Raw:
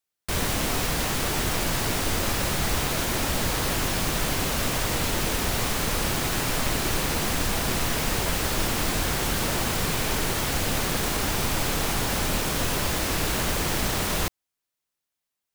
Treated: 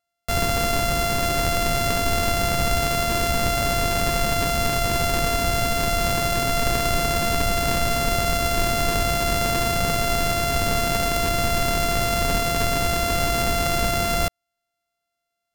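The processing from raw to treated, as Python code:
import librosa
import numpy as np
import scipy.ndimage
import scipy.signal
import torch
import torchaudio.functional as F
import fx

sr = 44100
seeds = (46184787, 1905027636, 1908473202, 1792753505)

y = np.r_[np.sort(x[:len(x) // 64 * 64].reshape(-1, 64), axis=1).ravel(), x[len(x) // 64 * 64:]]
y = y * librosa.db_to_amplitude(4.0)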